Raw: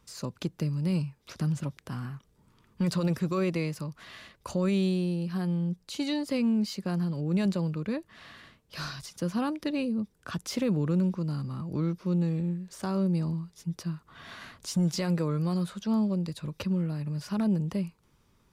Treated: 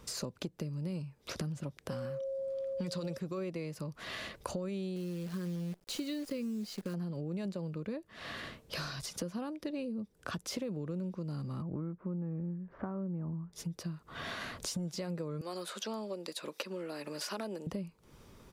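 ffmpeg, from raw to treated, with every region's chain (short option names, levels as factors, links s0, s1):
-filter_complex "[0:a]asettb=1/sr,asplit=3[s0][s1][s2];[s0]atrim=end=1.904[s3];[s1]atrim=start=1.9:end=3.18,asetpts=PTS-STARTPTS,afade=t=in:d=0.004:c=qsin,afade=t=out:st=1.276:d=0.004:c=qsin,equalizer=f=4800:t=o:w=1.9:g=7.5,bandreject=f=2800:w=28,aeval=exprs='val(0)+0.0158*sin(2*PI*540*n/s)':c=same[s4];[s2]atrim=start=3.176[s5];[s3][s4]acrossfade=d=0.004:c1=hsin:c2=qsin[s6];[s6][s5]acrossfade=d=0.004:c1=qsin:c2=hsin,asettb=1/sr,asplit=3[s7][s8][s9];[s7]atrim=end=4.964[s10];[s8]atrim=start=4.96:end=6.94,asetpts=PTS-STARTPTS,afade=t=in:d=0.004:c=qsin,afade=t=out:st=1.976:d=0.004:c=qsin,asuperstop=centerf=770:order=4:qfactor=1.7,acrusher=bits=8:dc=4:mix=0:aa=0.000001[s11];[s9]atrim=start=6.936[s12];[s10][s11]acrossfade=d=0.004:c1=hsin:c2=qsin[s13];[s13][s12]acrossfade=d=0.004:c1=qsin:c2=hsin,asettb=1/sr,asplit=3[s14][s15][s16];[s14]atrim=end=11.624[s17];[s15]atrim=start=11.62:end=13.53,asetpts=PTS-STARTPTS,afade=t=in:d=0.004:c=qsin,afade=t=out:st=1.906:d=0.004:c=qsin,lowpass=f=1600:w=0.5412,lowpass=f=1600:w=1.3066,equalizer=f=480:w=1.5:g=-5.5[s18];[s16]atrim=start=13.526[s19];[s17][s18]acrossfade=d=0.004:c1=hsin:c2=qsin[s20];[s20][s19]acrossfade=d=0.004:c1=qsin:c2=hsin,asettb=1/sr,asplit=3[s21][s22][s23];[s21]atrim=end=15.414[s24];[s22]atrim=start=15.41:end=17.67,asetpts=PTS-STARTPTS,afade=t=in:d=0.004:c=qsin,afade=t=out:st=2.256:d=0.004:c=qsin,highpass=f=280:w=0.5412,highpass=f=280:w=1.3066,tiltshelf=f=740:g=-4.5[s25];[s23]atrim=start=17.666[s26];[s24][s25]acrossfade=d=0.004:c1=hsin:c2=qsin[s27];[s27][s26]acrossfade=d=0.004:c1=qsin:c2=hsin,firequalizer=gain_entry='entry(150,0);entry(530,6);entry(920,0)':delay=0.05:min_phase=1,acompressor=threshold=0.00501:ratio=6,volume=2.66"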